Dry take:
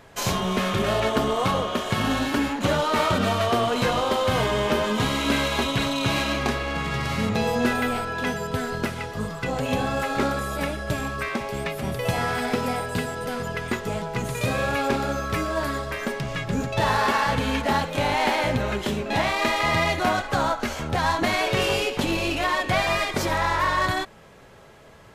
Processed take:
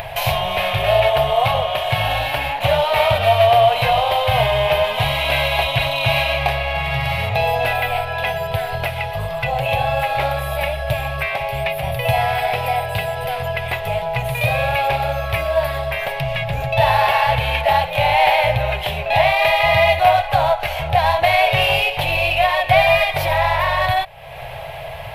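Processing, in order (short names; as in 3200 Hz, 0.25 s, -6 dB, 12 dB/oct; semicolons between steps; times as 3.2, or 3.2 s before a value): EQ curve 140 Hz 0 dB, 230 Hz -30 dB, 400 Hz -17 dB, 690 Hz +8 dB, 1300 Hz -10 dB, 2500 Hz +5 dB, 3800 Hz -2 dB, 6900 Hz -18 dB, 12000 Hz +2 dB; upward compressor, threshold -25 dBFS; gain +6.5 dB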